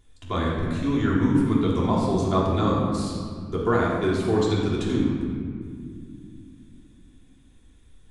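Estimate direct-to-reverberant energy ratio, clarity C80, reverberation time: −6.0 dB, 2.0 dB, 2.2 s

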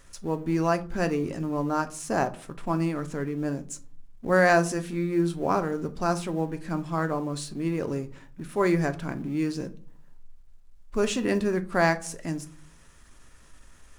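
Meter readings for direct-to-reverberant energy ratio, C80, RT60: 8.5 dB, 22.5 dB, 0.50 s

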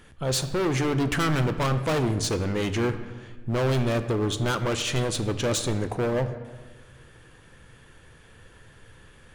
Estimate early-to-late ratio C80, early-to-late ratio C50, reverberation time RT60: 12.5 dB, 11.5 dB, 1.4 s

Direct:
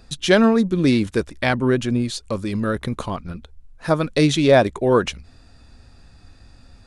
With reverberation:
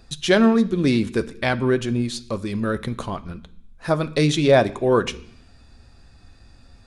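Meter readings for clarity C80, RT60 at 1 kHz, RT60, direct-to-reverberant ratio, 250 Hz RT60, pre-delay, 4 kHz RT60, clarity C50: 21.0 dB, 0.65 s, 0.65 s, 10.0 dB, 0.85 s, 3 ms, 0.80 s, 18.5 dB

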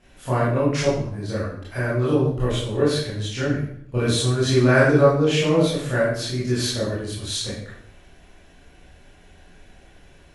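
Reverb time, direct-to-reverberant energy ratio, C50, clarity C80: 0.65 s, −9.5 dB, 1.5 dB, 5.0 dB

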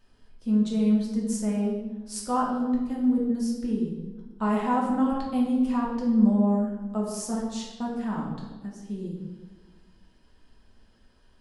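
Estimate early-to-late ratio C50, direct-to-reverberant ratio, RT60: 2.5 dB, −3.5 dB, 1.3 s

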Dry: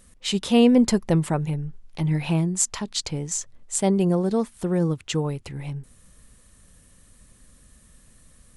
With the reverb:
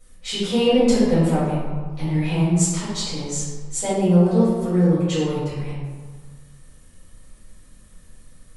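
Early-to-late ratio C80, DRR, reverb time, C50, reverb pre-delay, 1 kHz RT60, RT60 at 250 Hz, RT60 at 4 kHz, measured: 1.0 dB, −12.0 dB, 1.5 s, −2.0 dB, 4 ms, 1.5 s, 1.5 s, 0.85 s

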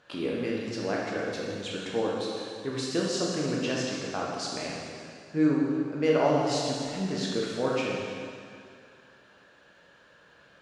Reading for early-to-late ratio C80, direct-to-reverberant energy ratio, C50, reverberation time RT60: 0.5 dB, −4.5 dB, −1.5 dB, 2.3 s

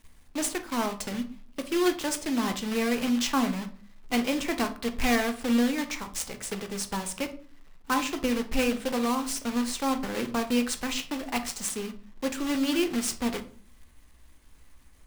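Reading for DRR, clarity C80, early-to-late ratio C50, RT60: 7.0 dB, 18.5 dB, 13.5 dB, 0.45 s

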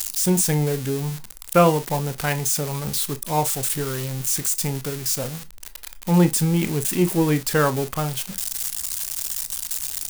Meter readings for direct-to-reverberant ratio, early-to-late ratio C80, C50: 11.0 dB, 60.0 dB, 20.5 dB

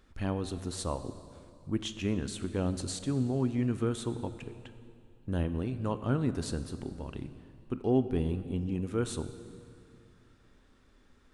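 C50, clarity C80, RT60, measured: 12.0 dB, 12.5 dB, 2.6 s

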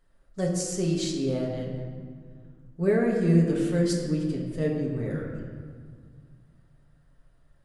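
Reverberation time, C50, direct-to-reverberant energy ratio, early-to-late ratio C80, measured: 2.0 s, 3.0 dB, −3.0 dB, 4.5 dB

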